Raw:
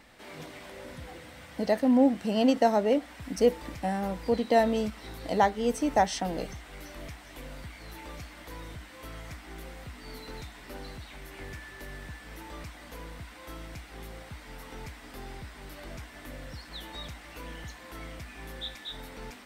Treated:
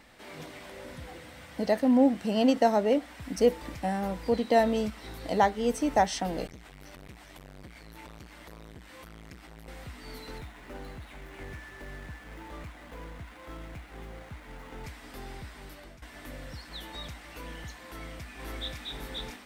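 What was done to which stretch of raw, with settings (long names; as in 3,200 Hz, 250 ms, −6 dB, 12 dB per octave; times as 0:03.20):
0:06.47–0:09.68: saturating transformer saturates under 470 Hz
0:10.38–0:14.84: running median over 9 samples
0:15.46–0:16.02: fade out equal-power, to −15.5 dB
0:17.86–0:18.83: delay throw 530 ms, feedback 15%, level −1 dB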